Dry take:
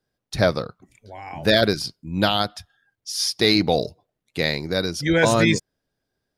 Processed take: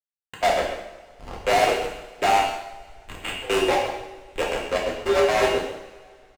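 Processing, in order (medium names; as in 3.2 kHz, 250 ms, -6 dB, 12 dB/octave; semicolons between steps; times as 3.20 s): sorted samples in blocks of 16 samples; mistuned SSB +68 Hz 320–2700 Hz; dynamic bell 810 Hz, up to +7 dB, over -39 dBFS, Q 3.3; in parallel at +2.5 dB: compression 4:1, threshold -36 dBFS, peak gain reduction 19.5 dB; on the sum: hysteresis with a dead band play -18 dBFS; trance gate "x.xx.xxx.x.x" 176 bpm -24 dB; hard clipper -20 dBFS, distortion -7 dB; echo from a far wall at 23 m, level -13 dB; two-slope reverb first 0.78 s, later 2.5 s, from -19 dB, DRR -3 dB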